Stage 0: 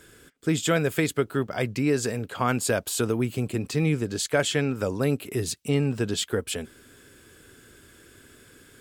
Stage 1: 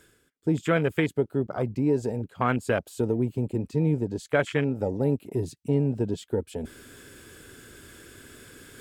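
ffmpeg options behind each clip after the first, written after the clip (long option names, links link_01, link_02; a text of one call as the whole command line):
ffmpeg -i in.wav -af "afwtdn=0.0355,areverse,acompressor=mode=upward:threshold=-30dB:ratio=2.5,areverse" out.wav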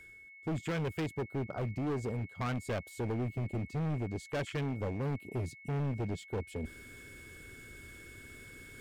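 ffmpeg -i in.wav -af "lowshelf=frequency=110:gain=11.5,aeval=exprs='val(0)+0.00631*sin(2*PI*2200*n/s)':channel_layout=same,asoftclip=type=hard:threshold=-23.5dB,volume=-7.5dB" out.wav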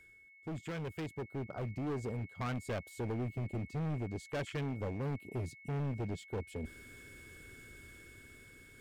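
ffmpeg -i in.wav -af "dynaudnorm=framelen=400:gausssize=7:maxgain=4dB,volume=-6.5dB" out.wav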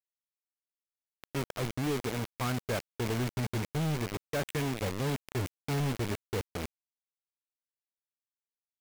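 ffmpeg -i in.wav -af "acrusher=bits=5:mix=0:aa=0.000001,volume=2dB" out.wav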